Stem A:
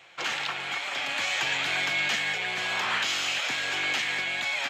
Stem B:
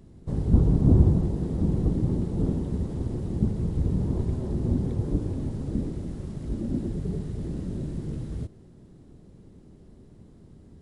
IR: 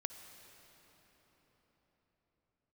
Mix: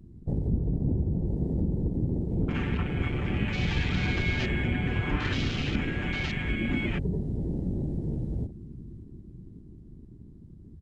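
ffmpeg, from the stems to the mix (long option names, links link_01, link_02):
-filter_complex "[0:a]lowpass=7400,aecho=1:1:6.8:0.9,adelay=2300,volume=-10dB,asplit=2[link_01][link_02];[link_02]volume=-20.5dB[link_03];[1:a]acompressor=threshold=-26dB:ratio=6,volume=2dB,asplit=2[link_04][link_05];[link_05]volume=-14dB[link_06];[2:a]atrim=start_sample=2205[link_07];[link_03][link_07]afir=irnorm=-1:irlink=0[link_08];[link_06]aecho=0:1:575|1150|1725|2300|2875|3450|4025|4600:1|0.55|0.303|0.166|0.0915|0.0503|0.0277|0.0152[link_09];[link_01][link_04][link_08][link_09]amix=inputs=4:normalize=0,afwtdn=0.0126"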